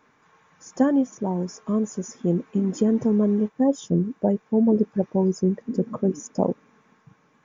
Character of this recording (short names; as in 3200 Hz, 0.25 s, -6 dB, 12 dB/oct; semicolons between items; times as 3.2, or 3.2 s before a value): noise floor -63 dBFS; spectral tilt -5.5 dB/oct